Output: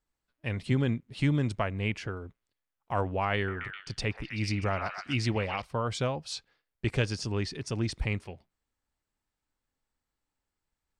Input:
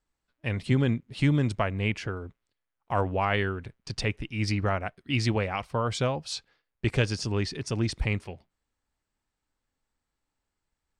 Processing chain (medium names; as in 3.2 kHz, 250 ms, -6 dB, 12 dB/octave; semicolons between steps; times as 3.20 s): 3.35–5.62 s: repeats whose band climbs or falls 127 ms, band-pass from 1.1 kHz, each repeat 0.7 oct, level -2 dB; trim -3 dB